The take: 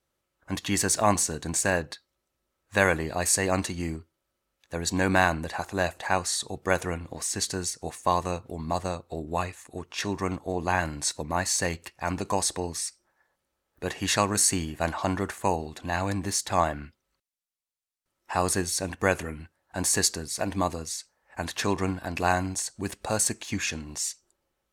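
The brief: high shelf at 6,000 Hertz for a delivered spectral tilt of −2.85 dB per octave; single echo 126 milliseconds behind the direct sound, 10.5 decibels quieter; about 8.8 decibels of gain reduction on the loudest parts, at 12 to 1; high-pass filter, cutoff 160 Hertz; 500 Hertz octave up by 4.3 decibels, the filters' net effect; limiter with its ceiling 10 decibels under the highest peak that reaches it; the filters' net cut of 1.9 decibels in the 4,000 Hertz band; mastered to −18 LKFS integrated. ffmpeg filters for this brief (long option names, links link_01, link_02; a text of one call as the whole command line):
ffmpeg -i in.wav -af "highpass=160,equalizer=frequency=500:width_type=o:gain=5.5,equalizer=frequency=4000:width_type=o:gain=-6,highshelf=frequency=6000:gain=7.5,acompressor=threshold=-23dB:ratio=12,alimiter=limit=-20dB:level=0:latency=1,aecho=1:1:126:0.299,volume=14dB" out.wav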